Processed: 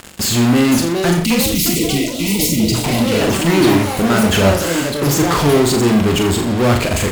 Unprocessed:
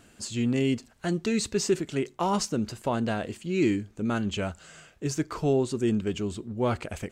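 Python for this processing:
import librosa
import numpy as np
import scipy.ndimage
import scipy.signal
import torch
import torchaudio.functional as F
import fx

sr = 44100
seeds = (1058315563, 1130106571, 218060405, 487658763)

p1 = fx.self_delay(x, sr, depth_ms=0.17)
p2 = fx.fuzz(p1, sr, gain_db=53.0, gate_db=-50.0)
p3 = p1 + (p2 * 10.0 ** (-7.0 / 20.0))
p4 = fx.notch(p3, sr, hz=5900.0, q=19.0)
p5 = p4 + fx.room_flutter(p4, sr, wall_m=7.1, rt60_s=0.47, dry=0)
p6 = fx.spec_box(p5, sr, start_s=1.25, length_s=1.96, low_hz=350.0, high_hz=1900.0, gain_db=-28)
p7 = fx.echo_pitch(p6, sr, ms=569, semitones=6, count=3, db_per_echo=-6.0)
y = p7 * 10.0 ** (3.0 / 20.0)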